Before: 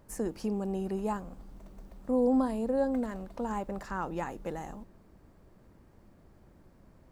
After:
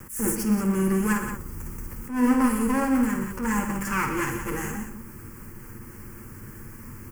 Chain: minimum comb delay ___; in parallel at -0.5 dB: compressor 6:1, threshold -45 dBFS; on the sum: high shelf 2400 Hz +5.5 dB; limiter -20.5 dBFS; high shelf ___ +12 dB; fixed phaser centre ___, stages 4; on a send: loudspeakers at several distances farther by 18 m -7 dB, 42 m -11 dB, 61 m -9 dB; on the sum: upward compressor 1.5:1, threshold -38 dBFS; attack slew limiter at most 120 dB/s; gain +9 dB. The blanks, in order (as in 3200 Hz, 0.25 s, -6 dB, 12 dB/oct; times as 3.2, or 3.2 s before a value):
8.7 ms, 7700 Hz, 1600 Hz